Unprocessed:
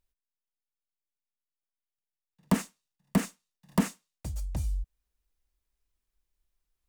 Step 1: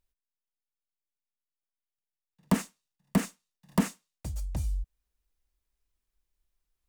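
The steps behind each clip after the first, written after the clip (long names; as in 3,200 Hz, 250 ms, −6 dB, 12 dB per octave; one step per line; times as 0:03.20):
no processing that can be heard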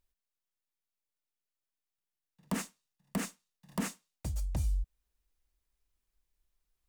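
brickwall limiter −23.5 dBFS, peak gain reduction 11.5 dB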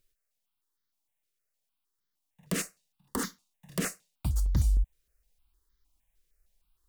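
step-sequenced phaser 6.5 Hz 230–2,600 Hz
level +8 dB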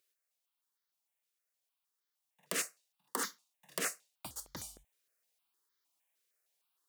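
high-pass filter 490 Hz 12 dB per octave
level −1 dB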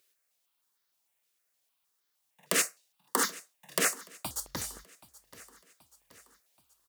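repeating echo 778 ms, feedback 52%, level −20 dB
level +8.5 dB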